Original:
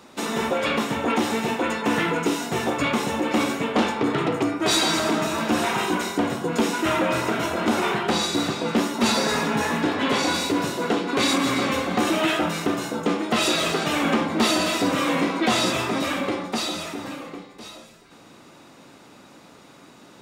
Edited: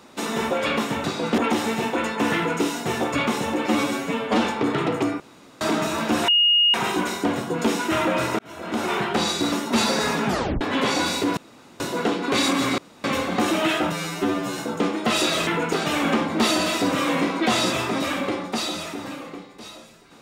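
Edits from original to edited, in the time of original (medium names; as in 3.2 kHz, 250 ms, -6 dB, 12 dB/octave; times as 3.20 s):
2.01–2.27 s: copy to 13.73 s
3.32–3.84 s: stretch 1.5×
4.60–5.01 s: room tone
5.68 s: add tone 2.86 kHz -14 dBFS 0.46 s
7.33–7.94 s: fade in
8.46–8.80 s: move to 1.04 s
9.55 s: tape stop 0.34 s
10.65 s: insert room tone 0.43 s
11.63 s: insert room tone 0.26 s
12.51–12.84 s: stretch 2×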